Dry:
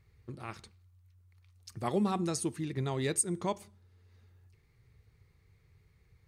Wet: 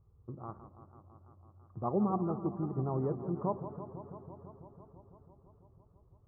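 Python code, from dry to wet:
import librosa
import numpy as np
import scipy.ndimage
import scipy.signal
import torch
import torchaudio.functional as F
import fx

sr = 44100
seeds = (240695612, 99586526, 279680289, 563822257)

y = scipy.signal.sosfilt(scipy.signal.cheby1(5, 1.0, 1200.0, 'lowpass', fs=sr, output='sos'), x)
y = fx.echo_warbled(y, sr, ms=166, feedback_pct=80, rate_hz=2.8, cents=144, wet_db=-12)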